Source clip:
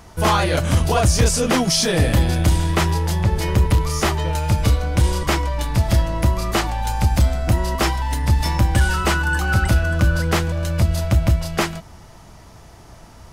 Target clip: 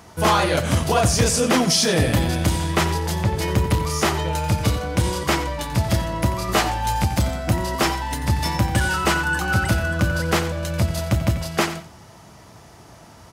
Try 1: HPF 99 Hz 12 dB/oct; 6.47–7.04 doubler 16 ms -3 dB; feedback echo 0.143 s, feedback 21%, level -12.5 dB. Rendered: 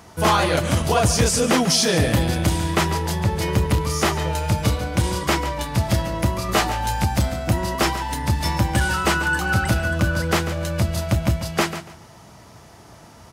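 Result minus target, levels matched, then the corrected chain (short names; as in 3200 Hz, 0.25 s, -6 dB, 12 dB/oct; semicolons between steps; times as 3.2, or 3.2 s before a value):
echo 54 ms late
HPF 99 Hz 12 dB/oct; 6.47–7.04 doubler 16 ms -3 dB; feedback echo 89 ms, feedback 21%, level -12.5 dB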